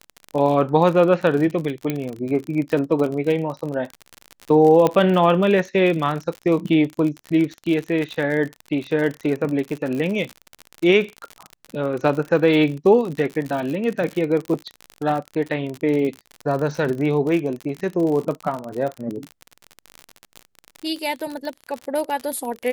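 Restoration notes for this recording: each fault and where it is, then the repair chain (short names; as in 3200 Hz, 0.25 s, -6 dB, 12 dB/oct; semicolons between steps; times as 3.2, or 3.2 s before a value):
crackle 48/s -25 dBFS
1.9 pop -10 dBFS
4.87 pop -7 dBFS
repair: de-click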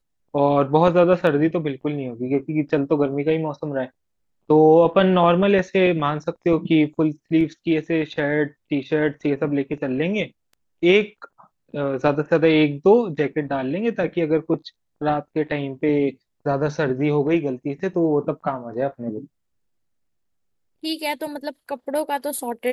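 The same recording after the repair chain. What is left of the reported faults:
none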